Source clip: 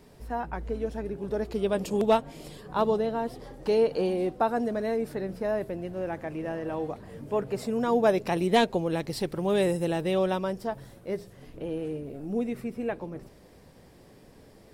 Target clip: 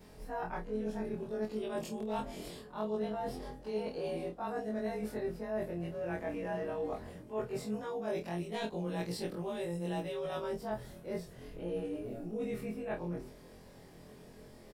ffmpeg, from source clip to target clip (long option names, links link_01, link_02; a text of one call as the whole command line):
ffmpeg -i in.wav -filter_complex "[0:a]afftfilt=real='re':imag='-im':win_size=2048:overlap=0.75,areverse,acompressor=threshold=-37dB:ratio=20,areverse,asplit=2[link_01][link_02];[link_02]adelay=28,volume=-7.5dB[link_03];[link_01][link_03]amix=inputs=2:normalize=0,volume=3dB" out.wav